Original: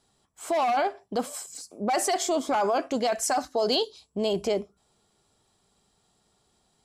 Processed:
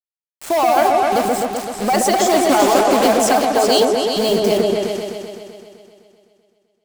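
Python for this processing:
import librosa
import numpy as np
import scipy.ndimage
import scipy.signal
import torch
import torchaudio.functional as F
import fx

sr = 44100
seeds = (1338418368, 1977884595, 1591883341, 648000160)

y = fx.block_float(x, sr, bits=3, at=(2.25, 3.09))
y = scipy.signal.sosfilt(scipy.signal.butter(2, 140.0, 'highpass', fs=sr, output='sos'), y)
y = fx.high_shelf(y, sr, hz=4900.0, db=-2.0)
y = fx.quant_dither(y, sr, seeds[0], bits=6, dither='none')
y = fx.echo_opening(y, sr, ms=128, hz=750, octaves=2, feedback_pct=70, wet_db=0)
y = y * librosa.db_to_amplitude(8.0)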